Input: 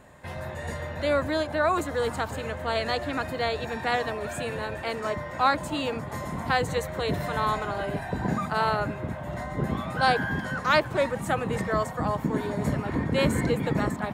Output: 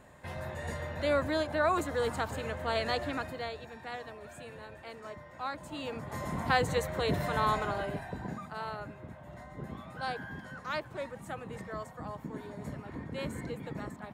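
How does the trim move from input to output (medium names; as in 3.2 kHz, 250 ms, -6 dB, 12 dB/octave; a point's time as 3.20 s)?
3.06 s -4 dB
3.70 s -15 dB
5.50 s -15 dB
6.30 s -2.5 dB
7.69 s -2.5 dB
8.42 s -14 dB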